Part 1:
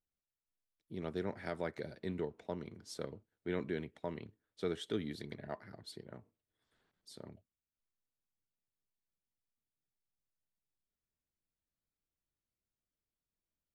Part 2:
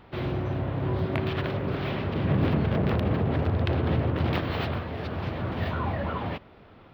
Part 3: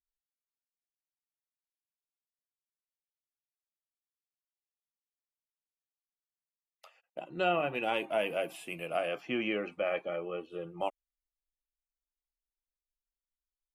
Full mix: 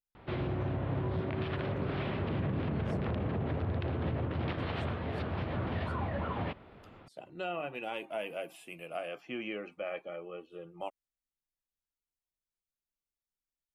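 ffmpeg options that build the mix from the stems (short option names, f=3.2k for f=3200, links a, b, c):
-filter_complex "[0:a]volume=-10dB[a];[1:a]lowpass=3.9k,adelay=150,volume=-2.5dB[b];[2:a]volume=-6dB[c];[a][b][c]amix=inputs=3:normalize=0,alimiter=level_in=1.5dB:limit=-24dB:level=0:latency=1:release=105,volume=-1.5dB"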